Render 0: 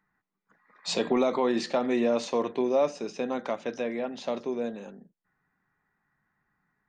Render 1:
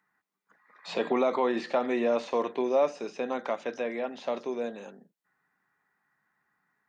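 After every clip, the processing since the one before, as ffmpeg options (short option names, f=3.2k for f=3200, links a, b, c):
-filter_complex "[0:a]highpass=f=440:p=1,acrossover=split=2900[a][b];[b]acompressor=threshold=-53dB:ratio=4:attack=1:release=60[c];[a][c]amix=inputs=2:normalize=0,volume=2dB"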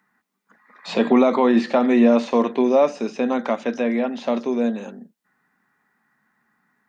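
-af "equalizer=f=230:t=o:w=0.42:g=11.5,volume=7.5dB"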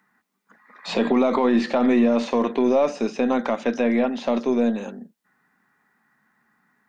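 -af "aeval=exprs='0.596*(cos(1*acos(clip(val(0)/0.596,-1,1)))-cos(1*PI/2))+0.00944*(cos(8*acos(clip(val(0)/0.596,-1,1)))-cos(8*PI/2))':c=same,alimiter=limit=-12dB:level=0:latency=1:release=48,volume=1.5dB"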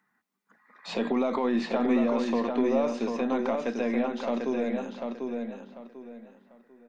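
-filter_complex "[0:a]asplit=2[a][b];[b]adelay=744,lowpass=f=4.4k:p=1,volume=-4.5dB,asplit=2[c][d];[d]adelay=744,lowpass=f=4.4k:p=1,volume=0.28,asplit=2[e][f];[f]adelay=744,lowpass=f=4.4k:p=1,volume=0.28,asplit=2[g][h];[h]adelay=744,lowpass=f=4.4k:p=1,volume=0.28[i];[a][c][e][g][i]amix=inputs=5:normalize=0,volume=-7.5dB"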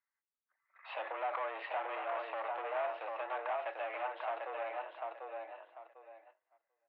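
-af "aeval=exprs='(tanh(22.4*val(0)+0.55)-tanh(0.55))/22.4':c=same,highpass=f=520:t=q:w=0.5412,highpass=f=520:t=q:w=1.307,lowpass=f=2.9k:t=q:w=0.5176,lowpass=f=2.9k:t=q:w=0.7071,lowpass=f=2.9k:t=q:w=1.932,afreqshift=98,agate=range=-16dB:threshold=-58dB:ratio=16:detection=peak,volume=-1.5dB"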